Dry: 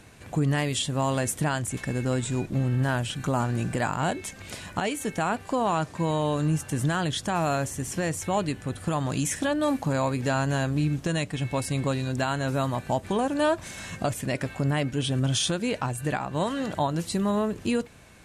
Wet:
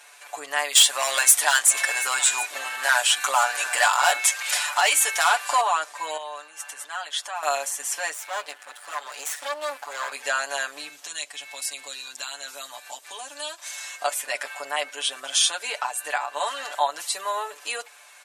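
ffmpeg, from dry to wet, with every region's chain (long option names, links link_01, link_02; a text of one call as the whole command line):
ffmpeg -i in.wav -filter_complex "[0:a]asettb=1/sr,asplit=3[link_01][link_02][link_03];[link_01]atrim=end=0.754[link_04];[link_02]atrim=start=0.75:end=5.61,asetpts=PTS-STARTPTS,afade=type=in:duration=0.004:curve=qsin,afade=type=out:start_time=4.856:duration=0.004:curve=qsin,highpass=frequency=900:poles=1,aeval=exprs='0.178*sin(PI/2*2*val(0)/0.178)':channel_layout=same,aecho=1:1:728:0.15,atrim=end_sample=214326[link_05];[link_03]atrim=start=5.606[link_06];[link_04][link_05]acrossfade=duration=0.004:curve1=hsin:curve2=qsin[link_07];[link_07][link_06]acrossfade=duration=0.004:curve1=qsin:curve2=hsin,asettb=1/sr,asplit=3[link_08][link_09][link_10];[link_08]atrim=end=6.174[link_11];[link_09]atrim=start=6.17:end=7.43,asetpts=PTS-STARTPTS,afade=type=in:duration=0.004:curve=qsin,afade=type=out:start_time=1.256:duration=0.004:curve=qsin,highshelf=frequency=4700:gain=-7.5,acompressor=threshold=-26dB:ratio=10:attack=3.2:release=140:knee=1:detection=peak,highpass=frequency=660:poles=1[link_12];[link_10]atrim=start=7.426[link_13];[link_11][link_12]acrossfade=duration=0.004:curve1=hsin:curve2=qsin[link_14];[link_14][link_13]acrossfade=duration=0.004:curve1=qsin:curve2=hsin,asettb=1/sr,asplit=3[link_15][link_16][link_17];[link_15]atrim=end=8.134[link_18];[link_16]atrim=start=8.13:end=10.12,asetpts=PTS-STARTPTS,afade=type=in:duration=0.004:curve=qsin,afade=type=out:start_time=1.986:duration=0.004:curve=qsin,highshelf=frequency=4600:gain=-5.5,aeval=exprs='max(val(0),0)':channel_layout=same[link_19];[link_17]atrim=start=10.116[link_20];[link_18][link_19]acrossfade=duration=0.004:curve1=hsin:curve2=qsin[link_21];[link_21][link_20]acrossfade=duration=0.004:curve1=qsin:curve2=hsin,asettb=1/sr,asplit=3[link_22][link_23][link_24];[link_22]atrim=end=10.894[link_25];[link_23]atrim=start=10.89:end=14.01,asetpts=PTS-STARTPTS,afade=type=in:duration=0.004:curve=qsin,afade=type=out:start_time=3.116:duration=0.004:curve=qsin,acrossover=split=260|3000[link_26][link_27][link_28];[link_27]acompressor=threshold=-50dB:ratio=2:attack=3.2:release=140:knee=2.83:detection=peak[link_29];[link_26][link_29][link_28]amix=inputs=3:normalize=0,equalizer=frequency=9800:width_type=o:width=0.38:gain=-4[link_30];[link_24]atrim=start=14.006[link_31];[link_25][link_30]acrossfade=duration=0.004:curve1=hsin:curve2=qsin[link_32];[link_32][link_31]acrossfade=duration=0.004:curve1=qsin:curve2=hsin,highpass=frequency=700:width=0.5412,highpass=frequency=700:width=1.3066,highshelf=frequency=5600:gain=4.5,aecho=1:1:6.9:0.94,volume=2dB" out.wav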